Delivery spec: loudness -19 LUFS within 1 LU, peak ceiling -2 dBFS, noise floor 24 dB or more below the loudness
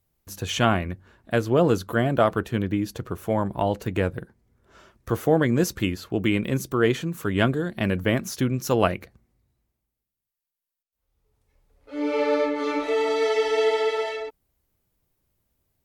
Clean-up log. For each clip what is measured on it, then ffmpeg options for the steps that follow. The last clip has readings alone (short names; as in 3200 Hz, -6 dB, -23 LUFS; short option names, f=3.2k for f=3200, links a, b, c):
loudness -24.0 LUFS; peak -5.0 dBFS; loudness target -19.0 LUFS
-> -af "volume=5dB,alimiter=limit=-2dB:level=0:latency=1"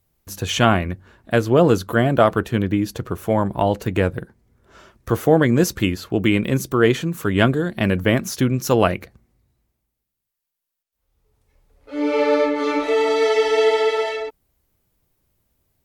loudness -19.5 LUFS; peak -2.0 dBFS; noise floor -81 dBFS